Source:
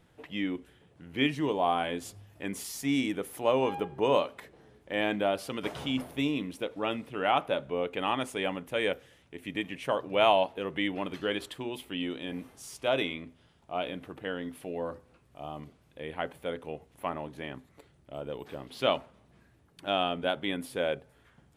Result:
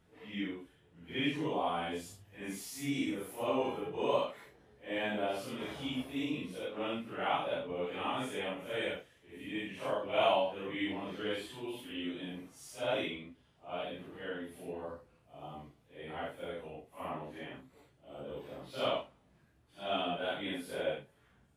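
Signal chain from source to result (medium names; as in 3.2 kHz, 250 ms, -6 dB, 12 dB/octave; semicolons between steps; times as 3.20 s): phase randomisation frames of 200 ms; trim -5.5 dB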